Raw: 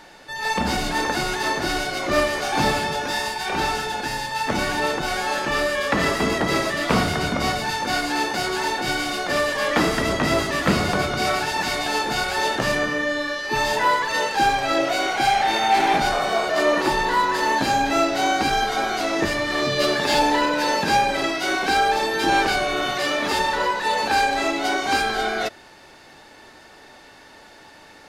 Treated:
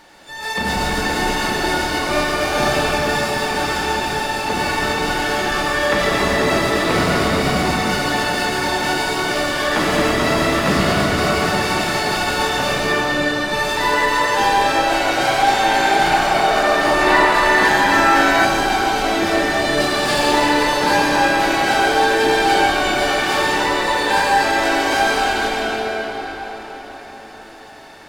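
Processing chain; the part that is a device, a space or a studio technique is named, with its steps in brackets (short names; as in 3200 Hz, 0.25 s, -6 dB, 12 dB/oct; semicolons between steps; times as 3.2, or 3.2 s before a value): shimmer-style reverb (harmoniser +12 st -9 dB; reverb RT60 5.4 s, pre-delay 75 ms, DRR -4.5 dB); 17.01–18.45 bell 1800 Hz +6 dB 1.1 oct; gain -2 dB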